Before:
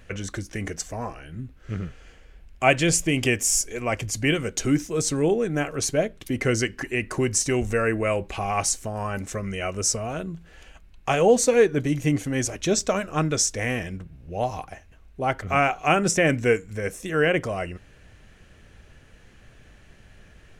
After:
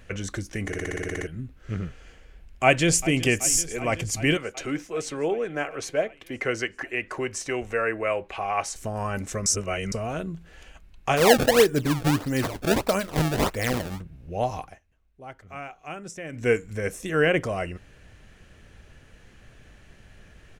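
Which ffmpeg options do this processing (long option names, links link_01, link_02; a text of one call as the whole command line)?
ffmpeg -i in.wav -filter_complex "[0:a]asplit=2[link_01][link_02];[link_02]afade=type=in:start_time=2.64:duration=0.01,afade=type=out:start_time=3.21:duration=0.01,aecho=0:1:380|760|1140|1520|1900|2280|2660|3040|3420|3800|4180|4560:0.141254|0.113003|0.0904024|0.0723219|0.0578575|0.046286|0.0370288|0.0296231|0.0236984|0.0189588|0.015167|0.0121336[link_03];[link_01][link_03]amix=inputs=2:normalize=0,asettb=1/sr,asplit=3[link_04][link_05][link_06];[link_04]atrim=end=4.374[link_07];[link_05]atrim=start=4.37:end=8.76,asetpts=PTS-STARTPTS,afade=type=in:duration=0.004:curve=qsin,afade=type=out:start_time=4.386:duration=0.004:curve=qsin,acrossover=split=400 3500:gain=0.224 1 0.251[link_08][link_09][link_10];[link_08][link_09][link_10]amix=inputs=3:normalize=0[link_11];[link_06]atrim=start=8.756[link_12];[link_07][link_11]acrossfade=duration=0.004:curve1=hsin:curve2=qsin[link_13];[link_13][link_12]acrossfade=duration=0.004:curve1=qsin:curve2=hsin,asplit=3[link_14][link_15][link_16];[link_14]afade=type=out:start_time=11.16:duration=0.02[link_17];[link_15]acrusher=samples=25:mix=1:aa=0.000001:lfo=1:lforange=40:lforate=1.6,afade=type=in:start_time=11.16:duration=0.02,afade=type=out:start_time=13.99:duration=0.02[link_18];[link_16]afade=type=in:start_time=13.99:duration=0.02[link_19];[link_17][link_18][link_19]amix=inputs=3:normalize=0,asplit=15[link_20][link_21][link_22][link_23][link_24][link_25][link_26][link_27][link_28][link_29][link_30][link_31][link_32][link_33][link_34];[link_20]atrim=end=0.732[link_35];[link_21]atrim=start=0.668:end=0.732[link_36];[link_22]atrim=start=0.668:end=0.732[link_37];[link_23]atrim=start=0.668:end=0.732[link_38];[link_24]atrim=start=0.668:end=0.732[link_39];[link_25]atrim=start=0.668:end=0.732[link_40];[link_26]atrim=start=0.668:end=0.732[link_41];[link_27]atrim=start=0.668:end=0.732[link_42];[link_28]atrim=start=0.668:end=0.732[link_43];[link_29]atrim=start=0.668:end=0.732[link_44];[link_30]atrim=start=1.268:end=9.462[link_45];[link_31]atrim=start=9.458:end=9.922,asetpts=PTS-STARTPTS,areverse[link_46];[link_32]atrim=start=9.918:end=14.8,asetpts=PTS-STARTPTS,afade=type=out:start_time=4.592:duration=0.29:curve=qsin:silence=0.141254[link_47];[link_33]atrim=start=14.8:end=16.32,asetpts=PTS-STARTPTS,volume=-17dB[link_48];[link_34]atrim=start=16.32,asetpts=PTS-STARTPTS,afade=type=in:duration=0.29:curve=qsin:silence=0.141254[link_49];[link_35][link_36]acrossfade=duration=0.004:curve1=hsin:curve2=hsin[link_50];[link_50][link_37]acrossfade=duration=0.004:curve1=hsin:curve2=hsin[link_51];[link_51][link_38]acrossfade=duration=0.004:curve1=hsin:curve2=hsin[link_52];[link_52][link_39]acrossfade=duration=0.004:curve1=hsin:curve2=hsin[link_53];[link_53][link_40]acrossfade=duration=0.004:curve1=hsin:curve2=hsin[link_54];[link_54][link_41]acrossfade=duration=0.004:curve1=hsin:curve2=hsin[link_55];[link_55][link_42]acrossfade=duration=0.004:curve1=hsin:curve2=hsin[link_56];[link_56][link_43]acrossfade=duration=0.004:curve1=hsin:curve2=hsin[link_57];[link_57][link_44]acrossfade=duration=0.004:curve1=hsin:curve2=hsin[link_58];[link_58][link_45]acrossfade=duration=0.004:curve1=hsin:curve2=hsin[link_59];[link_59][link_46]acrossfade=duration=0.004:curve1=hsin:curve2=hsin[link_60];[link_47][link_48][link_49]concat=n=3:v=0:a=1[link_61];[link_60][link_61]acrossfade=duration=0.004:curve1=hsin:curve2=hsin" out.wav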